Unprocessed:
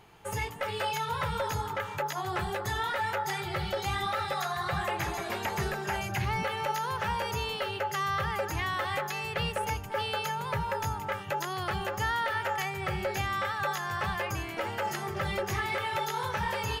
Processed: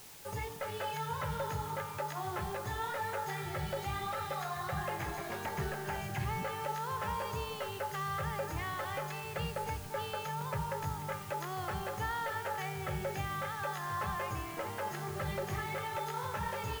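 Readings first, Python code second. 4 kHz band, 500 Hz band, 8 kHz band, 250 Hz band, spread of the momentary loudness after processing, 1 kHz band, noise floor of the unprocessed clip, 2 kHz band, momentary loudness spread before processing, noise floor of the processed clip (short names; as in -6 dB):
-9.5 dB, -5.0 dB, -5.0 dB, -3.5 dB, 3 LU, -5.5 dB, -39 dBFS, -8.0 dB, 3 LU, -43 dBFS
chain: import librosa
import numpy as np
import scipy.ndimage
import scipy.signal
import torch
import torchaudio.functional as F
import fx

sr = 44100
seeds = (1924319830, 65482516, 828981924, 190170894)

p1 = fx.high_shelf(x, sr, hz=2000.0, db=-8.5)
p2 = fx.comb_fb(p1, sr, f0_hz=150.0, decay_s=2.0, harmonics='all', damping=0.0, mix_pct=80)
p3 = fx.quant_dither(p2, sr, seeds[0], bits=8, dither='triangular')
p4 = p2 + (p3 * 10.0 ** (-11.0 / 20.0))
y = p4 * 10.0 ** (6.5 / 20.0)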